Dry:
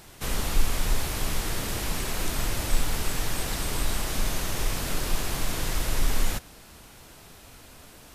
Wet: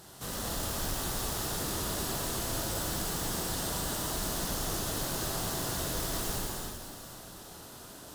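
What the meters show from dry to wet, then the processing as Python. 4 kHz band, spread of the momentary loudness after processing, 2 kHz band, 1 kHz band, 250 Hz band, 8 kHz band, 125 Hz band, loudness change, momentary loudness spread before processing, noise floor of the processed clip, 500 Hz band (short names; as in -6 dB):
-3.0 dB, 13 LU, -6.5 dB, -2.0 dB, -2.0 dB, -1.0 dB, -5.0 dB, -3.0 dB, 19 LU, -48 dBFS, -1.0 dB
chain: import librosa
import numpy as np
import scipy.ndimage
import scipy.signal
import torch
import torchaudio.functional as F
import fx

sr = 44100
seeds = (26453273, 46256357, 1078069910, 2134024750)

p1 = fx.quant_float(x, sr, bits=2)
p2 = fx.highpass(p1, sr, hz=110.0, slope=6)
p3 = 10.0 ** (-32.5 / 20.0) * np.tanh(p2 / 10.0 ** (-32.5 / 20.0))
p4 = fx.peak_eq(p3, sr, hz=2300.0, db=-11.5, octaves=0.53)
p5 = p4 + fx.echo_alternate(p4, sr, ms=247, hz=1000.0, feedback_pct=53, wet_db=-6.5, dry=0)
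p6 = fx.rev_gated(p5, sr, seeds[0], gate_ms=410, shape='flat', drr_db=-3.0)
y = p6 * librosa.db_to_amplitude(-2.0)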